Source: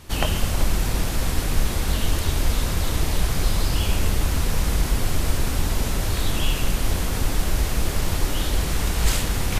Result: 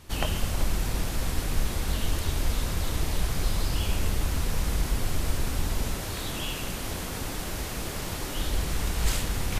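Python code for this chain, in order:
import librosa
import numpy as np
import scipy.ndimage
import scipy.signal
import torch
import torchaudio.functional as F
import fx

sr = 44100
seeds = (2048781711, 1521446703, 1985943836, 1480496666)

y = fx.low_shelf(x, sr, hz=77.0, db=-11.5, at=(5.94, 8.37))
y = y * 10.0 ** (-5.5 / 20.0)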